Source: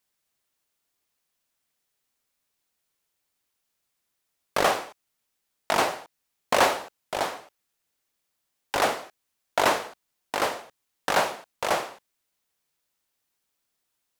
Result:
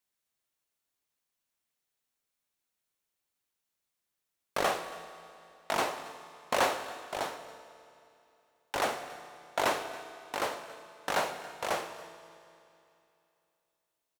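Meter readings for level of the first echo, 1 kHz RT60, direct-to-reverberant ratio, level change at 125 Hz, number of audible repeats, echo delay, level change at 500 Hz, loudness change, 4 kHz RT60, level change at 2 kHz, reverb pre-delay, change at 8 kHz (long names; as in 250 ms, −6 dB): −19.0 dB, 2.8 s, 9.5 dB, −6.5 dB, 1, 278 ms, −6.5 dB, −7.0 dB, 2.7 s, −6.5 dB, 6 ms, −6.5 dB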